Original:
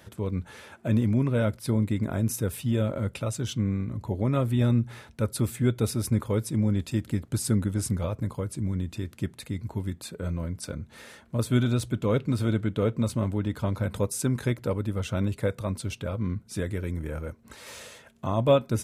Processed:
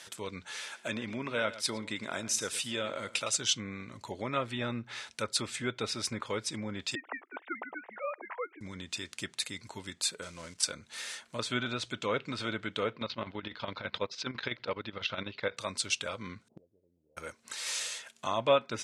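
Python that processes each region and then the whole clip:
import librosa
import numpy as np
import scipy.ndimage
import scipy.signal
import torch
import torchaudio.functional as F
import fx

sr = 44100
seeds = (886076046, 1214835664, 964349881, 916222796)

y = fx.chain(x, sr, fx.low_shelf(hz=97.0, db=-10.5),
    fx.echo_single(ms=113, db=-15.5), at=(0.56, 3.36))
y = fx.chain(y, sr, fx.sine_speech(),
    fx.cheby1_bandpass(low_hz=370.0, high_hz=2100.0, order=3),
    fx.air_absorb(metres=86.0), at=(6.95, 8.61))
y = fx.chain(y, sr, fx.cvsd(bps=64000),
    fx.level_steps(step_db=11), at=(10.22, 10.63))
y = fx.chain(y, sr, fx.steep_lowpass(hz=4500.0, slope=36),
    fx.chopper(hz=12.0, depth_pct=65, duty_pct=60), at=(12.93, 15.57))
y = fx.chain(y, sr, fx.steep_lowpass(hz=750.0, slope=48),
    fx.gate_flip(shuts_db=-27.0, range_db=-27), at=(16.48, 17.17))
y = fx.env_lowpass_down(y, sr, base_hz=2200.0, full_db=-19.5)
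y = fx.weighting(y, sr, curve='ITU-R 468')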